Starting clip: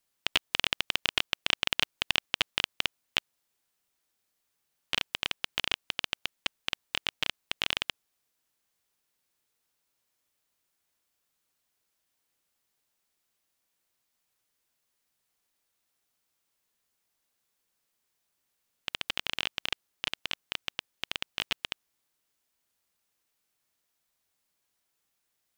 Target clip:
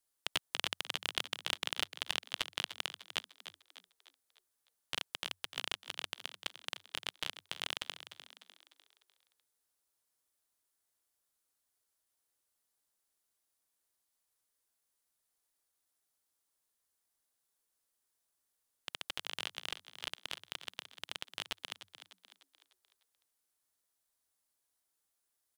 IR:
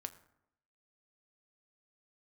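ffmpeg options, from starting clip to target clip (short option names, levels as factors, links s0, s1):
-filter_complex "[0:a]equalizer=f=160:t=o:w=0.67:g=-10,equalizer=f=2500:t=o:w=0.67:g=-5,equalizer=f=10000:t=o:w=0.67:g=6,asplit=2[s0][s1];[s1]asplit=5[s2][s3][s4][s5][s6];[s2]adelay=300,afreqshift=90,volume=0.251[s7];[s3]adelay=600,afreqshift=180,volume=0.116[s8];[s4]adelay=900,afreqshift=270,volume=0.0531[s9];[s5]adelay=1200,afreqshift=360,volume=0.0245[s10];[s6]adelay=1500,afreqshift=450,volume=0.0112[s11];[s7][s8][s9][s10][s11]amix=inputs=5:normalize=0[s12];[s0][s12]amix=inputs=2:normalize=0,volume=0.501"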